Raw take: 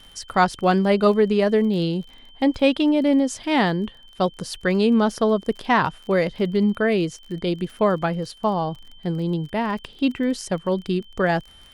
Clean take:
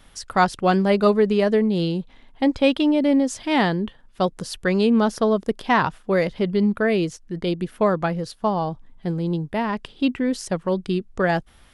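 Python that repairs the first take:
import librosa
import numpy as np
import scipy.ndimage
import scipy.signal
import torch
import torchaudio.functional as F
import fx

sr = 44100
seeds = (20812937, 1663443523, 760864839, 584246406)

y = fx.fix_declick_ar(x, sr, threshold=6.5)
y = fx.notch(y, sr, hz=3100.0, q=30.0)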